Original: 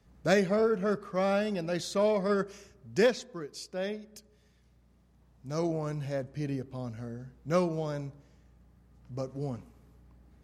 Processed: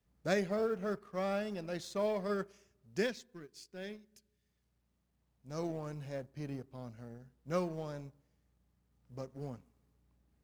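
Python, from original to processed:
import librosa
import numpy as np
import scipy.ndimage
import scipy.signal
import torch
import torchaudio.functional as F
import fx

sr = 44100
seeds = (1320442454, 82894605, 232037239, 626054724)

y = fx.law_mismatch(x, sr, coded='A')
y = fx.spec_box(y, sr, start_s=3.02, length_s=1.47, low_hz=410.0, high_hz=1400.0, gain_db=-6)
y = y * 10.0 ** (-6.5 / 20.0)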